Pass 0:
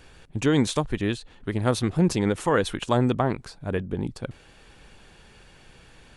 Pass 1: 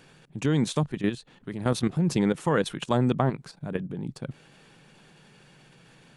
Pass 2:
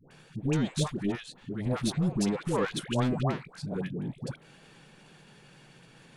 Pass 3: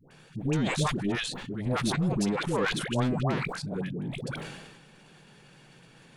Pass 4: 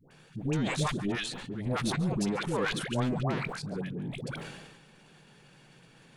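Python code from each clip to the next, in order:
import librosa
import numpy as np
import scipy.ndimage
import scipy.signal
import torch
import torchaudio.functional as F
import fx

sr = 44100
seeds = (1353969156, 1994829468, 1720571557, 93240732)

y1 = fx.low_shelf_res(x, sr, hz=100.0, db=-13.0, q=3.0)
y1 = fx.level_steps(y1, sr, step_db=11)
y2 = 10.0 ** (-22.0 / 20.0) * np.tanh(y1 / 10.0 ** (-22.0 / 20.0))
y2 = fx.dispersion(y2, sr, late='highs', ms=110.0, hz=750.0)
y3 = fx.sustainer(y2, sr, db_per_s=42.0)
y4 = y3 + 10.0 ** (-18.0 / 20.0) * np.pad(y3, (int(141 * sr / 1000.0), 0))[:len(y3)]
y4 = y4 * 10.0 ** (-2.5 / 20.0)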